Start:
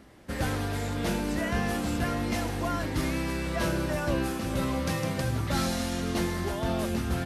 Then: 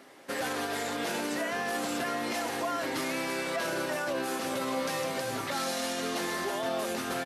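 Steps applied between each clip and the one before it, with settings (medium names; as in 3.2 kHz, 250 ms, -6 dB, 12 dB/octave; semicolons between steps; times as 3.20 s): high-pass 390 Hz 12 dB/octave; comb 7.4 ms, depth 31%; peak limiter -27 dBFS, peak gain reduction 8.5 dB; trim +4 dB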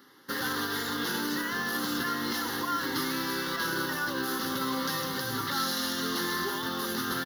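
treble shelf 10 kHz +11 dB; in parallel at -3 dB: bit crusher 6-bit; on the sum: static phaser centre 2.4 kHz, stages 6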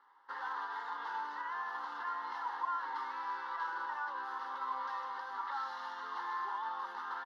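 ladder band-pass 980 Hz, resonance 75%; trim +2.5 dB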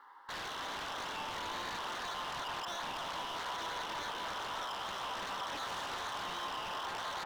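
in parallel at +1 dB: compressor with a negative ratio -44 dBFS, ratio -1; on the sum: wavefolder -37 dBFS; band-passed feedback delay 303 ms, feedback 80%, band-pass 790 Hz, level -3.5 dB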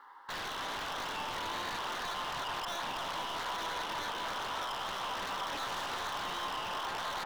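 tracing distortion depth 0.036 ms; trim +2.5 dB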